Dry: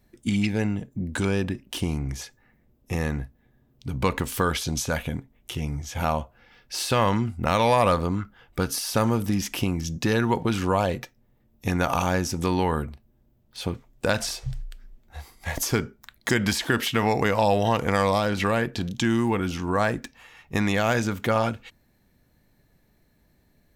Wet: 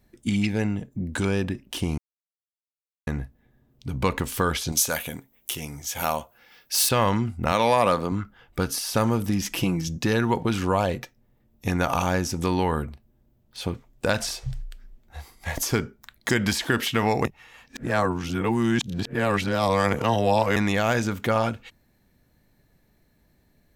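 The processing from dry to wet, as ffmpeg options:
-filter_complex "[0:a]asettb=1/sr,asplit=3[a][b][c];[a]atrim=end=4.724[d];[b]atrim=start=4.72:end=6.89,asetpts=PTS-STARTPTS,afade=t=in:d=0.004:c=qsin,afade=t=out:st=2.166:d=0.004:c=qsin,aemphasis=mode=production:type=bsi[e];[c]atrim=start=6.886[f];[d][e]acrossfade=d=0.004:c1=hsin:c2=qsin[g];[g][f]acrossfade=d=0.004:c1=qsin:c2=hsin,asettb=1/sr,asplit=3[h][i][j];[h]atrim=end=7.524[k];[i]atrim=start=7.52:end=8.12,asetpts=PTS-STARTPTS,afade=t=in:d=0.004:c=qsin,afade=t=out:st=0.596:d=0.004:c=qsin,highpass=150[l];[j]atrim=start=8.116[m];[k][l]acrossfade=d=0.004:c1=hsin:c2=qsin[n];[n][m]acrossfade=d=0.004:c1=qsin:c2=hsin,asettb=1/sr,asplit=3[o][p][q];[o]atrim=end=9.444[r];[p]atrim=start=9.44:end=9.88,asetpts=PTS-STARTPTS,afade=t=in:d=0.004:c=qsin,afade=t=out:st=0.436:d=0.004:c=qsin,aecho=1:1:6.1:0.65,atrim=end_sample=19404[s];[q]atrim=start=9.876[t];[r][s]acrossfade=d=0.004:c1=hsin:c2=qsin[u];[u][t]acrossfade=d=0.004:c1=qsin:c2=hsin,asplit=5[v][w][x][y][z];[v]atrim=end=1.98,asetpts=PTS-STARTPTS,afade=t=out:st=1.976:d=0.004:c=hsin[aa];[w]atrim=start=1.98:end=3.07,asetpts=PTS-STARTPTS,volume=0[ab];[x]atrim=start=3.07:end=17.252,asetpts=PTS-STARTPTS,afade=t=in:d=0.004:c=hsin[ac];[y]atrim=start=17.248:end=20.562,asetpts=PTS-STARTPTS,areverse[ad];[z]atrim=start=20.558[ae];[aa][ab][ac]concat=n=3:v=0:a=1[af];[af][ad]acrossfade=d=0.004:c1=hsin:c2=hsin[ag];[ag][ae]acrossfade=d=0.004:c1=hsin:c2=hsin"

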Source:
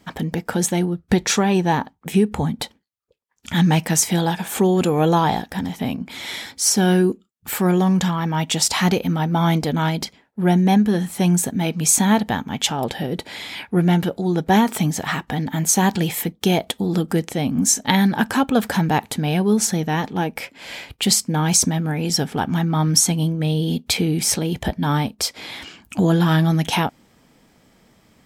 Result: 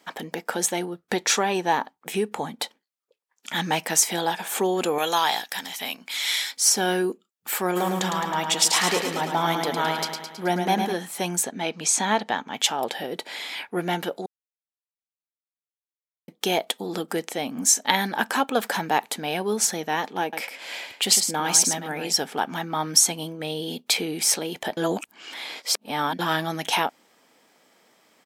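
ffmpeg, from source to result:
-filter_complex "[0:a]asettb=1/sr,asplit=3[a][b][c];[a]atrim=end=4.984[d];[b]atrim=start=4.98:end=6.57,asetpts=PTS-STARTPTS,afade=t=in:d=0.004:c=qsin,afade=t=out:st=1.586:d=0.004:c=qsin,tiltshelf=f=1.2k:g=-9.5[e];[c]atrim=start=6.566[f];[d][e]acrossfade=d=0.004:c1=hsin:c2=qsin[g];[g][f]acrossfade=d=0.004:c1=qsin:c2=hsin,asplit=3[h][i][j];[h]afade=t=out:st=7.75:d=0.02[k];[i]aecho=1:1:107|214|321|428|535|642|749|856:0.531|0.308|0.179|0.104|0.0601|0.0348|0.0202|0.0117,afade=t=in:st=7.75:d=0.02,afade=t=out:st=10.92:d=0.02[l];[j]afade=t=in:st=10.92:d=0.02[m];[k][l][m]amix=inputs=3:normalize=0,asettb=1/sr,asplit=3[n][o][p];[n]atrim=end=11.434[q];[o]atrim=start=11.43:end=12.54,asetpts=PTS-STARTPTS,afade=t=in:d=0.004:c=qsin,afade=t=out:st=1.106:d=0.004:c=qsin,lowpass=6.7k[r];[p]atrim=start=12.536[s];[q][r]acrossfade=d=0.004:c1=hsin:c2=qsin[t];[t][s]acrossfade=d=0.004:c1=qsin:c2=hsin,asettb=1/sr,asplit=3[u][v][w];[u]atrim=end=20.224[x];[v]atrim=start=20.22:end=22.12,asetpts=PTS-STARTPTS,afade=t=in:d=0.004:c=qsin,afade=t=out:st=1.896:d=0.004:c=qsin,aecho=1:1:106:0.422,atrim=end_sample=83790[y];[w]atrim=start=22.116[z];[x][y]acrossfade=d=0.004:c1=hsin:c2=qsin[aa];[aa][z]acrossfade=d=0.004:c1=qsin:c2=hsin,asplit=5[ab][ac][ad][ae][af];[ab]atrim=end=14.26,asetpts=PTS-STARTPTS,afade=t=out:st=14.256:d=0.004:c=hsin[ag];[ac]atrim=start=14.26:end=16.28,asetpts=PTS-STARTPTS,volume=0[ah];[ad]atrim=start=16.28:end=24.772,asetpts=PTS-STARTPTS,afade=t=in:d=0.004:c=hsin[ai];[ae]atrim=start=24.768:end=26.192,asetpts=PTS-STARTPTS,areverse[aj];[af]atrim=start=26.188[ak];[ag][ah][ai]concat=n=3:v=0:a=1[al];[al][aj]acrossfade=d=0.004:c1=hsin:c2=hsin[am];[am][ak]acrossfade=d=0.004:c1=hsin:c2=hsin,highpass=430,volume=-1dB"

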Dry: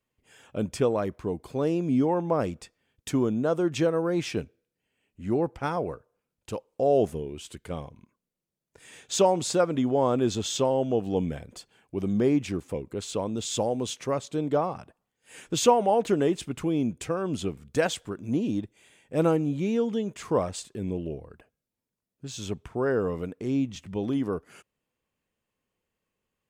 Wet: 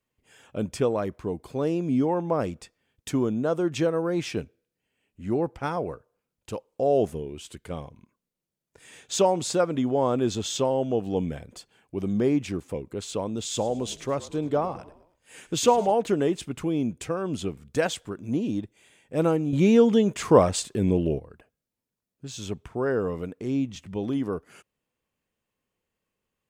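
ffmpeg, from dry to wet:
-filter_complex "[0:a]asettb=1/sr,asplit=3[a][b][c];[a]atrim=end=13.464[d];[b]atrim=start=13.46:end=15.92,asetpts=PTS-STARTPTS,afade=t=in:d=0.004:c=qsin,afade=t=out:st=2.456:d=0.004:c=qsin,asplit=5[e][f][g][h][i];[f]adelay=106,afreqshift=-49,volume=-18dB[j];[g]adelay=212,afreqshift=-98,volume=-24.4dB[k];[h]adelay=318,afreqshift=-147,volume=-30.8dB[l];[i]adelay=424,afreqshift=-196,volume=-37.1dB[m];[e][j][k][l][m]amix=inputs=5:normalize=0,atrim=end_sample=108486[n];[c]atrim=start=15.916[o];[d][n]acrossfade=d=0.004:c1=hsin:c2=qsin[p];[p][o]acrossfade=d=0.004:c1=qsin:c2=hsin,asplit=3[q][r][s];[q]atrim=end=19.532[t];[r]atrim=start=19.528:end=21.192,asetpts=PTS-STARTPTS,volume=8.5dB[u];[s]atrim=start=21.188[v];[t][u]acrossfade=d=0.004:c1=hsin:c2=hsin[w];[w][v]acrossfade=d=0.004:c1=hsin:c2=hsin"

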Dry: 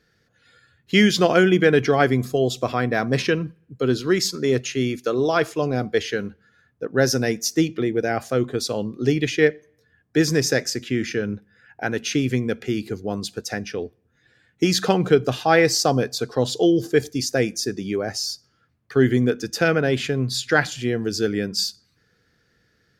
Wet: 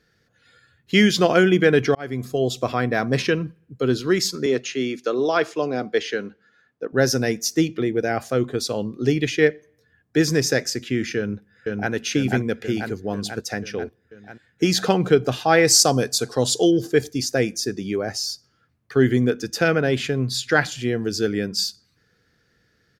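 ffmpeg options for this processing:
-filter_complex "[0:a]asettb=1/sr,asplit=3[a][b][c];[a]atrim=end=4.464[d];[b]atrim=start=4.46:end=6.93,asetpts=PTS-STARTPTS,afade=t=in:d=0.004:c=qsin,afade=t=out:st=2.466:d=0.004:c=qsin,acrossover=split=190 7600:gain=0.141 1 0.224[e][f][g];[e][f][g]amix=inputs=3:normalize=0[h];[c]atrim=start=6.926[i];[d][h]acrossfade=d=0.004:c1=hsin:c2=qsin[j];[j][i]acrossfade=d=0.004:c1=qsin:c2=hsin,asplit=2[k][l];[l]afade=t=in:st=11.17:d=0.01,afade=t=out:st=11.92:d=0.01,aecho=0:1:490|980|1470|1960|2450|2940|3430|3920|4410|4900|5390:0.841395|0.546907|0.355489|0.231068|0.150194|0.0976263|0.0634571|0.0412471|0.0268106|0.0174269|0.0113275[m];[k][m]amix=inputs=2:normalize=0,asettb=1/sr,asplit=3[n][o][p];[n]atrim=end=15.674[q];[o]atrim=start=15.67:end=16.71,asetpts=PTS-STARTPTS,afade=t=in:d=0.004:c=qsin,afade=t=out:st=1.036:d=0.004:c=qsin,equalizer=f=8.9k:w=0.68:g=12[r];[p]atrim=start=16.706[s];[q][r]acrossfade=d=0.004:c1=hsin:c2=qsin[t];[t][s]acrossfade=d=0.004:c1=qsin:c2=hsin,asplit=2[u][v];[u]atrim=end=1.95,asetpts=PTS-STARTPTS,afade=t=out:st=1.946:d=0.004:c=hsin[w];[v]atrim=start=1.95,asetpts=PTS-STARTPTS,afade=t=in:d=0.7:c=qsin[x];[w][x]concat=n=2:v=0:a=1"

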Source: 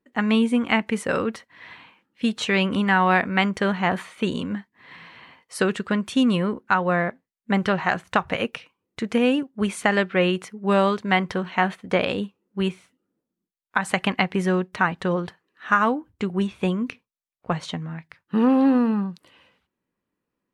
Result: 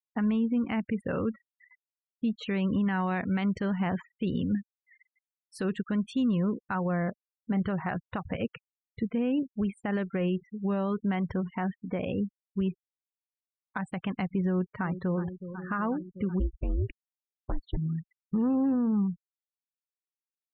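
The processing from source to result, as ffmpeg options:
-filter_complex "[0:a]asettb=1/sr,asplit=3[a][b][c];[a]atrim=end=2.864[d];[b]atrim=start=2.86:end=6.32,asetpts=PTS-STARTPTS,afade=t=in:d=0.004:c=qsin,afade=t=out:st=3.456:d=0.004:c=qsin,highshelf=f=3.9k:g=10[e];[c]atrim=start=6.316[f];[d][e]acrossfade=d=0.004:c1=hsin:c2=qsin[g];[g][f]acrossfade=d=0.004:c1=qsin:c2=hsin,asettb=1/sr,asplit=3[h][i][j];[h]atrim=end=7.044[k];[i]atrim=start=7.04:end=7.62,asetpts=PTS-STARTPTS,afade=t=in:d=0.004:c=qsin,afade=t=out:st=0.576:d=0.004:c=qsin,asplit=2[l][m];[m]adelay=27,volume=-12dB[n];[l][n]amix=inputs=2:normalize=0,atrim=end_sample=25578[o];[j]atrim=start=7.616[p];[k][o]acrossfade=d=0.004:c1=hsin:c2=qsin[q];[q][p]acrossfade=d=0.004:c1=qsin:c2=hsin,asettb=1/sr,asplit=3[r][s][t];[r]atrim=end=11.404[u];[s]atrim=start=11.4:end=12.59,asetpts=PTS-STARTPTS,afade=t=in:d=0.004:c=qsin,afade=t=out:st=1.186:d=0.004:c=qsin,acompressor=threshold=-26dB:ratio=1.5:attack=3.2:release=140:knee=1:detection=peak[v];[t]atrim=start=12.586[w];[u][v]acrossfade=d=0.004:c1=hsin:c2=qsin[x];[x][w]acrossfade=d=0.004:c1=qsin:c2=hsin,asplit=2[y][z];[z]afade=t=in:st=14.46:d=0.01,afade=t=out:st=15.18:d=0.01,aecho=0:1:370|740|1110|1480|1850|2220|2590|2960|3330|3700|4070|4440:0.16788|0.134304|0.107443|0.0859548|0.0687638|0.0550111|0.0440088|0.0352071|0.0281657|0.0225325|0.018026|0.0144208[aa];[y][aa]amix=inputs=2:normalize=0,asplit=3[ab][ac][ad];[ab]afade=t=out:st=16.39:d=0.02[ae];[ac]aeval=exprs='val(0)*sin(2*PI*140*n/s)':c=same,afade=t=in:st=16.39:d=0.02,afade=t=out:st=17.76:d=0.02[af];[ad]afade=t=in:st=17.76:d=0.02[ag];[ae][af][ag]amix=inputs=3:normalize=0,afftfilt=real='re*gte(hypot(re,im),0.0398)':imag='im*gte(hypot(re,im),0.0398)':win_size=1024:overlap=0.75,aemphasis=mode=reproduction:type=riaa,alimiter=limit=-13dB:level=0:latency=1:release=113,volume=-7.5dB"

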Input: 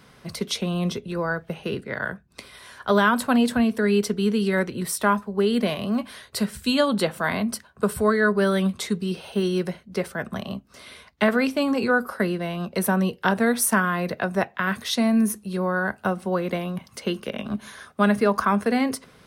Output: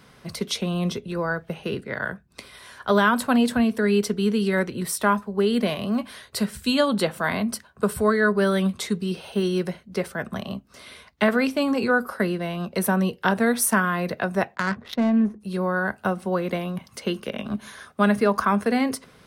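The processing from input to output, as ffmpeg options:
-filter_complex "[0:a]asplit=3[a][b][c];[a]afade=t=out:st=14.54:d=0.02[d];[b]adynamicsmooth=sensitivity=1.5:basefreq=690,afade=t=in:st=14.54:d=0.02,afade=t=out:st=15.4:d=0.02[e];[c]afade=t=in:st=15.4:d=0.02[f];[d][e][f]amix=inputs=3:normalize=0"

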